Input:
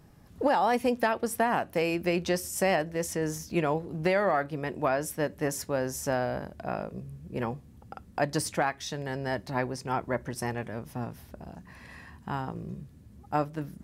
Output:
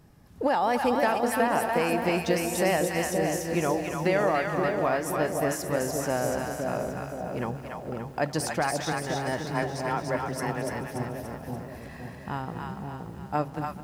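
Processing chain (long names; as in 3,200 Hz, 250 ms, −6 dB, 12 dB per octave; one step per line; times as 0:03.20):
0:09.50–0:10.73: frequency shifter +17 Hz
echo with a time of its own for lows and highs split 750 Hz, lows 523 ms, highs 289 ms, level −3 dB
feedback echo at a low word length 217 ms, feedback 55%, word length 8 bits, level −14 dB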